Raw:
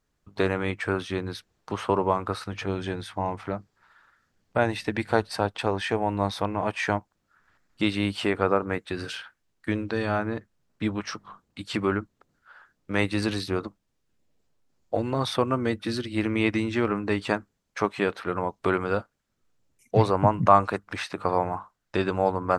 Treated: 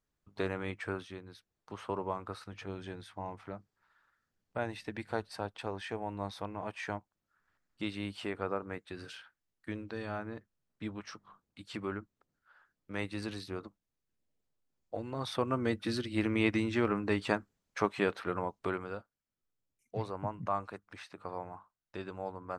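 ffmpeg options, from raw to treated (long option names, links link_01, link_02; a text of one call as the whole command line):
ffmpeg -i in.wav -af "volume=4dB,afade=type=out:start_time=0.89:duration=0.33:silence=0.354813,afade=type=in:start_time=1.22:duration=0.71:silence=0.473151,afade=type=in:start_time=15.11:duration=0.62:silence=0.421697,afade=type=out:start_time=18.18:duration=0.81:silence=0.266073" out.wav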